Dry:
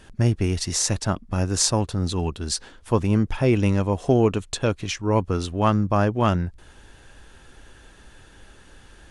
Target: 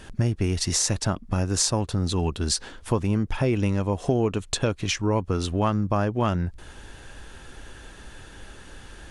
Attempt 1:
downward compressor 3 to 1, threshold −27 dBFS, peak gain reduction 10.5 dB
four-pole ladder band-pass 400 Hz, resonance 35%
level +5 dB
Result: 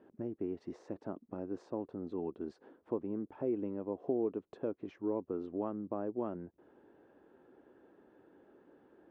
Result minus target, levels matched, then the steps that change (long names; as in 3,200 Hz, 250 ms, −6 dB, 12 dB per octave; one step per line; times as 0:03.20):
500 Hz band +5.0 dB
remove: four-pole ladder band-pass 400 Hz, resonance 35%